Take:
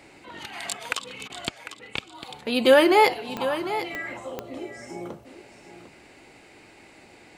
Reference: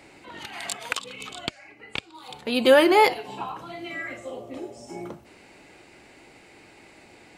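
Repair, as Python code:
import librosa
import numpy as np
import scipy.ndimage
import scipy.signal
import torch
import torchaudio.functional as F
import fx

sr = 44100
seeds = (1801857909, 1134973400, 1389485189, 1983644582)

y = fx.fix_declick_ar(x, sr, threshold=10.0)
y = fx.fix_interpolate(y, sr, at_s=(1.28,), length_ms=17.0)
y = fx.fix_echo_inverse(y, sr, delay_ms=750, level_db=-11.5)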